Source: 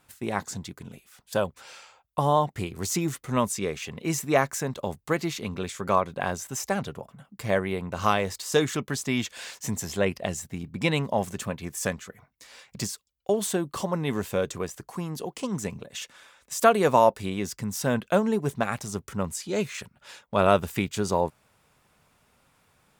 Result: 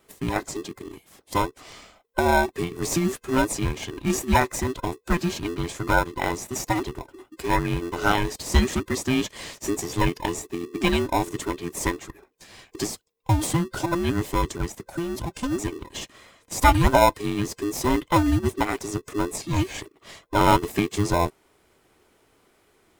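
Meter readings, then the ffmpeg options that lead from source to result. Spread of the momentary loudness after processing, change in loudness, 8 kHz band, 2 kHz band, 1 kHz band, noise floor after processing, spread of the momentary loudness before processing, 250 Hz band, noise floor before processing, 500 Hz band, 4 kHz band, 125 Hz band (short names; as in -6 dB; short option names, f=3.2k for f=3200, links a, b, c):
13 LU, +2.5 dB, +1.5 dB, +4.5 dB, +3.5 dB, -63 dBFS, 13 LU, +4.5 dB, -68 dBFS, -1.0 dB, +3.5 dB, +4.5 dB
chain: -filter_complex "[0:a]afftfilt=real='real(if(between(b,1,1008),(2*floor((b-1)/24)+1)*24-b,b),0)':imag='imag(if(between(b,1,1008),(2*floor((b-1)/24)+1)*24-b,b),0)*if(between(b,1,1008),-1,1)':win_size=2048:overlap=0.75,asplit=2[a][b];[b]acrusher=samples=29:mix=1:aa=0.000001,volume=-6dB[c];[a][c]amix=inputs=2:normalize=0,volume=1dB"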